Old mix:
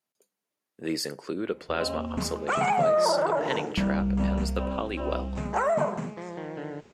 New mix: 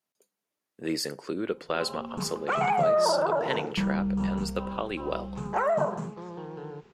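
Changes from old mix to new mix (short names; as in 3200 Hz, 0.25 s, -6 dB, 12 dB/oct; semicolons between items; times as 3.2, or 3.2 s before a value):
first sound: add fixed phaser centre 410 Hz, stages 8; second sound: add air absorption 120 m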